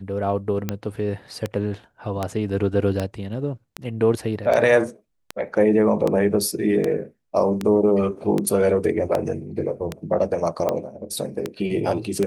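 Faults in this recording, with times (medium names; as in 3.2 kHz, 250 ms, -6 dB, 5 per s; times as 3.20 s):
tick 78 rpm -10 dBFS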